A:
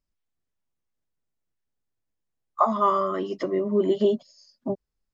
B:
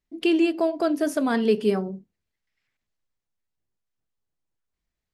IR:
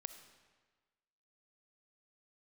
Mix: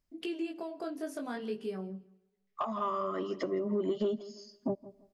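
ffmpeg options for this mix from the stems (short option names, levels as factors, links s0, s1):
-filter_complex "[0:a]asoftclip=type=tanh:threshold=0.266,volume=1.12,asplit=3[s0][s1][s2];[s1]volume=0.119[s3];[s2]volume=0.0794[s4];[1:a]acompressor=threshold=0.0316:ratio=2,flanger=delay=15.5:depth=6.7:speed=0.5,volume=0.473,asplit=4[s5][s6][s7][s8];[s6]volume=0.211[s9];[s7]volume=0.0891[s10];[s8]apad=whole_len=226603[s11];[s0][s11]sidechaincompress=threshold=0.00126:ratio=4:attack=16:release=1350[s12];[2:a]atrim=start_sample=2205[s13];[s3][s9]amix=inputs=2:normalize=0[s14];[s14][s13]afir=irnorm=-1:irlink=0[s15];[s4][s10]amix=inputs=2:normalize=0,aecho=0:1:165|330|495|660:1|0.23|0.0529|0.0122[s16];[s12][s5][s15][s16]amix=inputs=4:normalize=0,acompressor=threshold=0.0316:ratio=4"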